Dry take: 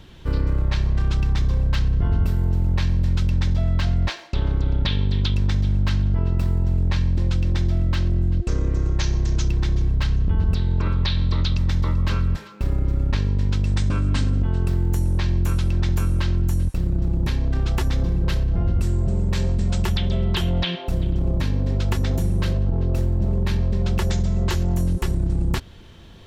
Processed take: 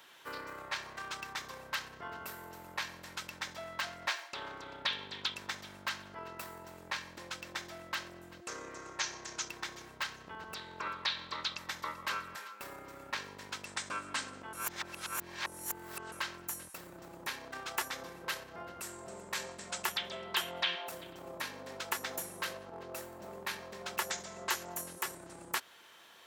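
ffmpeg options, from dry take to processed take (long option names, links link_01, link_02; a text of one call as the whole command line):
ffmpeg -i in.wav -filter_complex "[0:a]asplit=3[link_01][link_02][link_03];[link_01]atrim=end=14.532[link_04];[link_02]atrim=start=14.528:end=16.122,asetpts=PTS-STARTPTS,areverse[link_05];[link_03]atrim=start=16.118[link_06];[link_04][link_05]acrossfade=duration=0.004:curve1=hsin:curve2=hsin[link_07];[link_07][link_06]acrossfade=duration=0.004:curve1=hsin:curve2=hsin,highpass=1400,equalizer=frequency=3700:width_type=o:width=2.4:gain=-13,volume=7dB" out.wav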